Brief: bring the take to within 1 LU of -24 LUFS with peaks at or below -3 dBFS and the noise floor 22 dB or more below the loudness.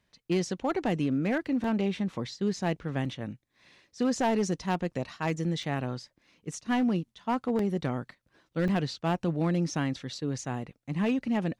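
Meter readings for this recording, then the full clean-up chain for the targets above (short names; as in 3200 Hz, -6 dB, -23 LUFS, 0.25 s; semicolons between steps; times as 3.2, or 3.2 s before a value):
clipped 0.8%; flat tops at -20.5 dBFS; dropouts 5; longest dropout 2.6 ms; loudness -30.5 LUFS; peak -20.5 dBFS; loudness target -24.0 LUFS
-> clip repair -20.5 dBFS; interpolate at 1.64/3.05/5.63/7.59/8.68, 2.6 ms; gain +6.5 dB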